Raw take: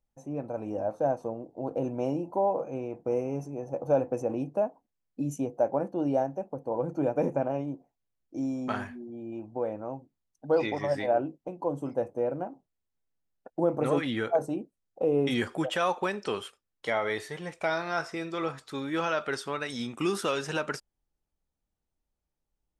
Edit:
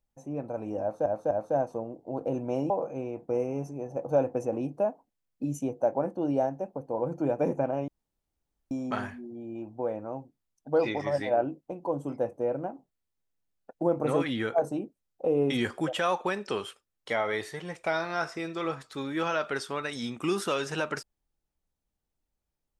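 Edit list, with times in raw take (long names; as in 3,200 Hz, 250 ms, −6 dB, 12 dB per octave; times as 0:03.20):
0:00.81–0:01.06: repeat, 3 plays
0:02.20–0:02.47: remove
0:07.65–0:08.48: fill with room tone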